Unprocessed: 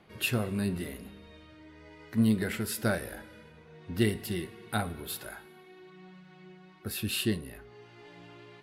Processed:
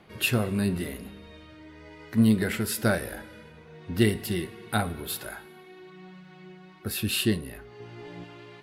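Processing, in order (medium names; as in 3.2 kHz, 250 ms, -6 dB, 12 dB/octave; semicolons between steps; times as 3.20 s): 7.80–8.24 s: bass shelf 500 Hz +8.5 dB; trim +4.5 dB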